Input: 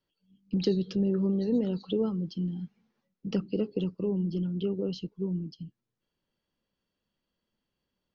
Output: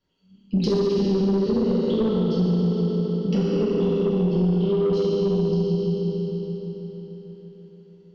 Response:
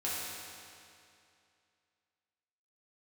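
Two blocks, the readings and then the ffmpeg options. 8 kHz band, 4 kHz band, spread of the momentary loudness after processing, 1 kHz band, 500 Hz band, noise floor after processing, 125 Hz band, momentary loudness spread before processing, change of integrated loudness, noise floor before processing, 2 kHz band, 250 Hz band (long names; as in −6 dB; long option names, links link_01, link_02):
can't be measured, +7.5 dB, 11 LU, +15.0 dB, +11.0 dB, −54 dBFS, +10.0 dB, 12 LU, +8.0 dB, −85 dBFS, +9.0 dB, +8.0 dB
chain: -filter_complex "[1:a]atrim=start_sample=2205,asetrate=23814,aresample=44100[link_01];[0:a][link_01]afir=irnorm=-1:irlink=0,aresample=16000,aresample=44100,asoftclip=type=tanh:threshold=-15dB,acompressor=threshold=-23dB:ratio=6,lowshelf=frequency=180:gain=5,volume=3dB"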